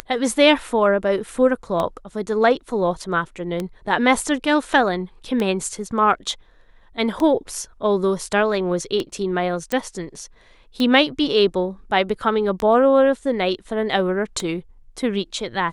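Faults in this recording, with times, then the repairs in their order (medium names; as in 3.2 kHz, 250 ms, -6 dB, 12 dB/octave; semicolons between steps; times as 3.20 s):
tick 33 1/3 rpm -11 dBFS
9.72 s: pop -10 dBFS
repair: de-click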